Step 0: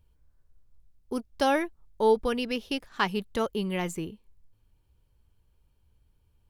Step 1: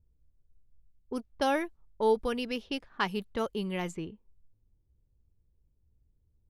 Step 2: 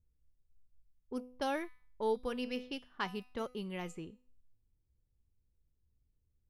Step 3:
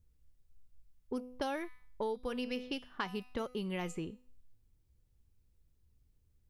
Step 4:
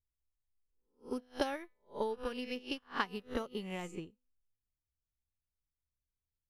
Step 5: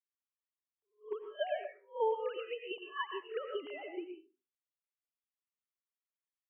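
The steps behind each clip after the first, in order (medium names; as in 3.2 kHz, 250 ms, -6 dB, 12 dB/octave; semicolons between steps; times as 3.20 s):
level-controlled noise filter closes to 390 Hz, open at -25.5 dBFS; trim -3.5 dB
feedback comb 250 Hz, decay 0.5 s, harmonics all, mix 60%
compression 6:1, threshold -40 dBFS, peak gain reduction 11.5 dB; trim +6.5 dB
reverse spectral sustain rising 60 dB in 0.54 s; upward expansion 2.5:1, over -50 dBFS; trim +3.5 dB
formants replaced by sine waves; reverberation RT60 0.35 s, pre-delay 70 ms, DRR 4 dB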